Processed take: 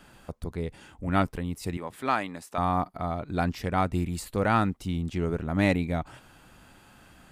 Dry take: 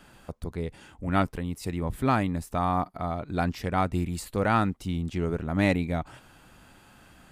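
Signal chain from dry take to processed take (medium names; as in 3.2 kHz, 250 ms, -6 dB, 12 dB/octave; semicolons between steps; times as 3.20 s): 1.77–2.58 s: frequency weighting A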